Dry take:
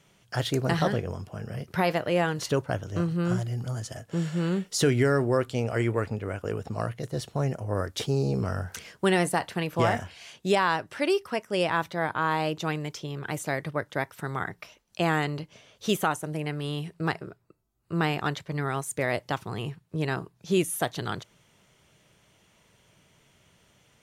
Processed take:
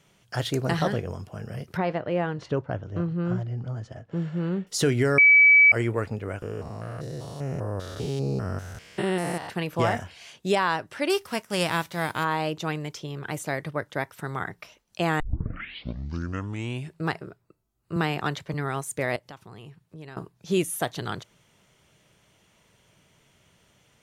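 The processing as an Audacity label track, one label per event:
1.770000	4.670000	tape spacing loss at 10 kHz 28 dB
5.180000	5.720000	bleep 2.29 kHz -11.5 dBFS
6.420000	9.500000	spectrogram pixelated in time every 200 ms
11.090000	12.230000	formants flattened exponent 0.6
15.200000	15.200000	tape start 1.82 s
17.960000	18.540000	three bands compressed up and down depth 40%
19.160000	20.170000	compression 2:1, threshold -50 dBFS

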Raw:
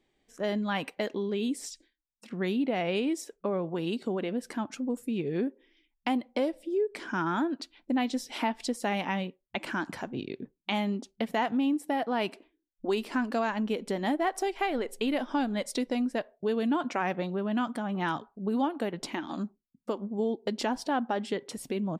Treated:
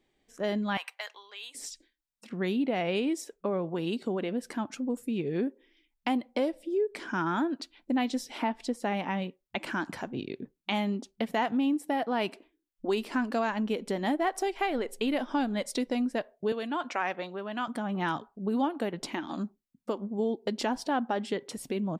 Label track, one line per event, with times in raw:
0.770000	1.550000	high-pass 890 Hz 24 dB/octave
8.320000	9.220000	treble shelf 2.6 kHz -7.5 dB
16.520000	17.680000	frequency weighting A

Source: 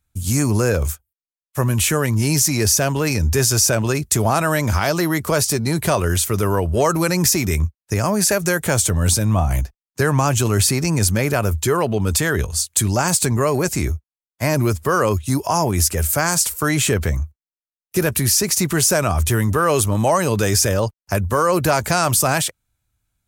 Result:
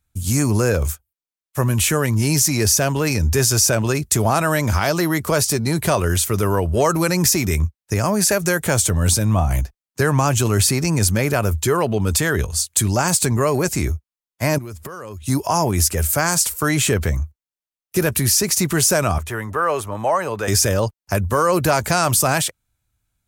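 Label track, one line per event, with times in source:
14.580000	15.220000	compression 20:1, threshold -28 dBFS
19.180000	20.480000	three-band isolator lows -12 dB, under 470 Hz, highs -13 dB, over 2.3 kHz

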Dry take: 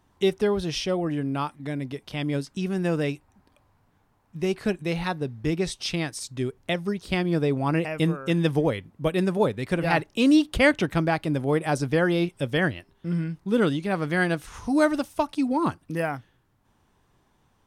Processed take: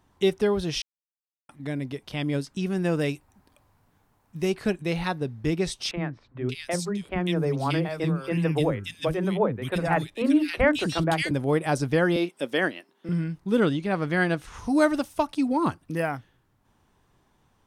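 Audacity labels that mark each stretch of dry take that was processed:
0.820000	1.490000	mute
2.990000	4.500000	treble shelf 6.7 kHz +7.5 dB
5.910000	11.310000	three bands offset in time mids, lows, highs 40/580 ms, splits 300/2200 Hz
12.160000	13.090000	high-pass 230 Hz 24 dB/octave
13.600000	14.590000	treble shelf 8.1 kHz -9.5 dB

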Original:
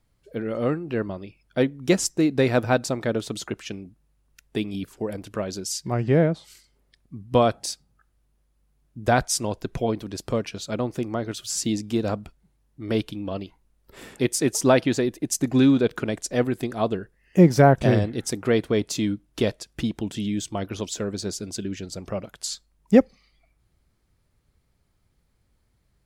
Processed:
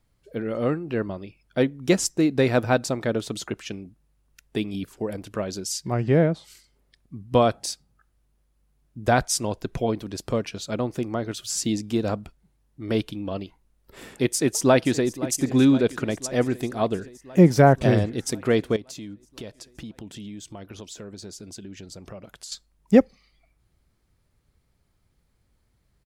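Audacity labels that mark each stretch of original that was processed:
14.160000	15.090000	echo throw 520 ms, feedback 75%, level -16.5 dB
18.760000	22.520000	compression 3:1, threshold -39 dBFS

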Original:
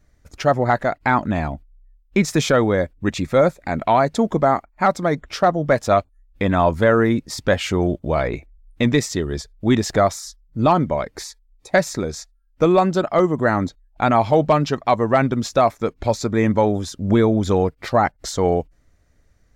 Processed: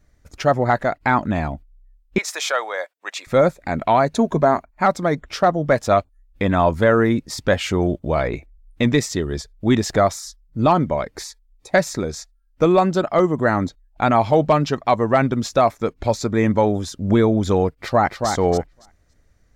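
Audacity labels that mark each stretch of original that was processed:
2.180000	3.270000	high-pass 660 Hz 24 dB/octave
4.120000	4.710000	rippled EQ curve crests per octave 1.5, crest to trough 7 dB
17.740000	18.290000	echo throw 280 ms, feedback 15%, level -5.5 dB

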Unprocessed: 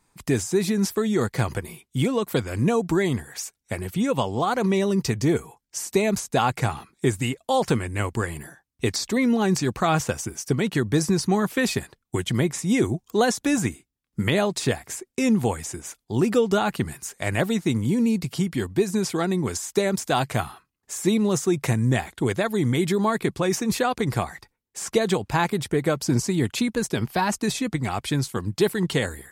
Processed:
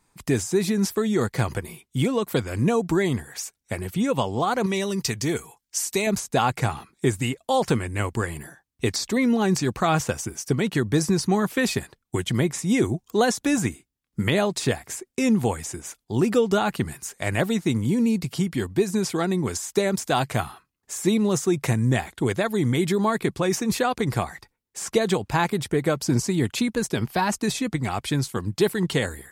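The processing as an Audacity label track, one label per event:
4.660000	6.070000	tilt shelf lows -5 dB, about 1.5 kHz

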